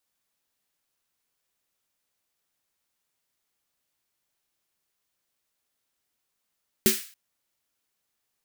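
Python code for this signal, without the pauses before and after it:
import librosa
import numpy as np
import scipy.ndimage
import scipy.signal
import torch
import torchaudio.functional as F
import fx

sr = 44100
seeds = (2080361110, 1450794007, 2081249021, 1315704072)

y = fx.drum_snare(sr, seeds[0], length_s=0.28, hz=220.0, second_hz=380.0, noise_db=-1.0, noise_from_hz=1600.0, decay_s=0.18, noise_decay_s=0.43)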